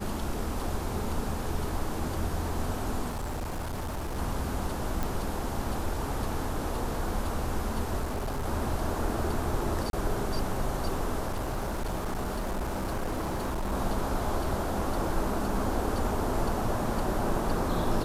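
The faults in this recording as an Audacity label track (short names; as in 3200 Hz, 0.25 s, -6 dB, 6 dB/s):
3.090000	4.190000	clipped -30 dBFS
5.030000	5.030000	pop
8.030000	8.460000	clipped -28 dBFS
9.900000	9.930000	gap 32 ms
11.280000	13.730000	clipped -27.5 dBFS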